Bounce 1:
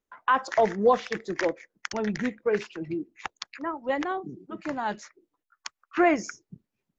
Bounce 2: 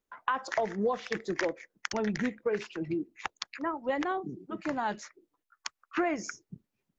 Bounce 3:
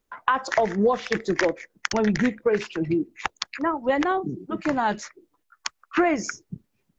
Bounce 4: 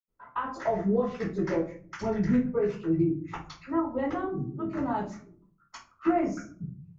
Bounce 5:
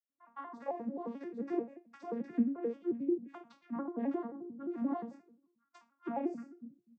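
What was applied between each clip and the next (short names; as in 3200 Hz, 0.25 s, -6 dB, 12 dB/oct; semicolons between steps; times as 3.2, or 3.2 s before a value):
compressor 6:1, threshold -26 dBFS, peak gain reduction 10.5 dB
low shelf 120 Hz +5.5 dB; gain +8 dB
reverb RT60 0.50 s, pre-delay 76 ms
arpeggiated vocoder minor triad, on A#3, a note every 88 ms; gain -7.5 dB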